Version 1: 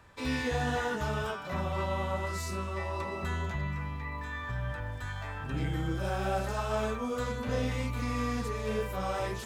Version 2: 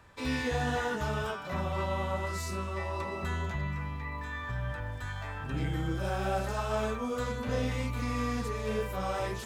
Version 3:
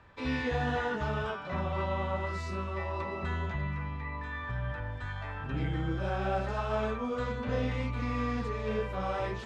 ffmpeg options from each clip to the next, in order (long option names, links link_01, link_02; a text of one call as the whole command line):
ffmpeg -i in.wav -af anull out.wav
ffmpeg -i in.wav -af "lowpass=3600" out.wav